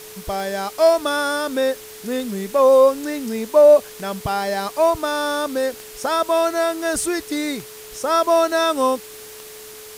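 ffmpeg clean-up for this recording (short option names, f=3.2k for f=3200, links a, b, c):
-af "adeclick=t=4,bandreject=f=430:w=30,afftdn=nr=23:nf=-39"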